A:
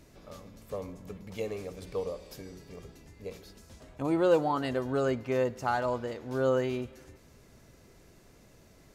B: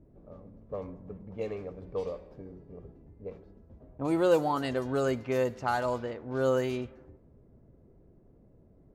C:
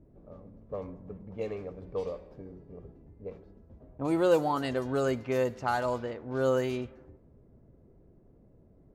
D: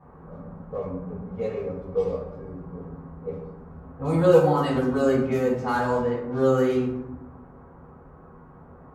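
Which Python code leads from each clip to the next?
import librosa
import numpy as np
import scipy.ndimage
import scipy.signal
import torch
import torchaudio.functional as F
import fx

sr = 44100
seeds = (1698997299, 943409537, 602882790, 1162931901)

y1 = fx.env_lowpass(x, sr, base_hz=440.0, full_db=-25.0)
y1 = fx.high_shelf(y1, sr, hz=8900.0, db=11.0)
y2 = y1
y3 = fx.dmg_noise_band(y2, sr, seeds[0], low_hz=200.0, high_hz=1200.0, level_db=-58.0)
y3 = fx.rev_fdn(y3, sr, rt60_s=0.85, lf_ratio=1.55, hf_ratio=0.45, size_ms=37.0, drr_db=-9.5)
y3 = F.gain(torch.from_numpy(y3), -5.0).numpy()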